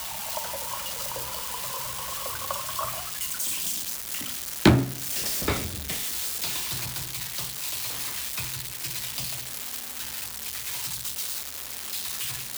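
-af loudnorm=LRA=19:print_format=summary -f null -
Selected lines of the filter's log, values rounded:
Input Integrated:    -28.8 LUFS
Input True Peak:      -3.0 dBTP
Input LRA:             4.8 LU
Input Threshold:     -38.8 LUFS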